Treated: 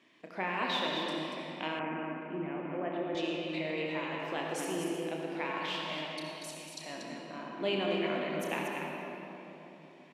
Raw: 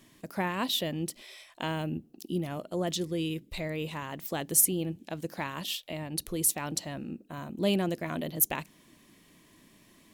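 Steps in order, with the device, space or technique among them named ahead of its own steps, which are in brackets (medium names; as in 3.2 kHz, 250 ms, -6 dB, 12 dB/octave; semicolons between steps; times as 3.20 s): 6.06–6.81 s: inverse Chebyshev high-pass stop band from 700 Hz, stop band 70 dB; station announcement (band-pass 320–3500 Hz; peaking EQ 2.4 kHz +6 dB 0.45 oct; loudspeakers at several distances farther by 11 m -8 dB, 81 m -6 dB; reverberation RT60 3.7 s, pre-delay 57 ms, DRR -1 dB); 1.79–3.15 s: Chebyshev band-pass 120–2500 Hz, order 4; trim -4 dB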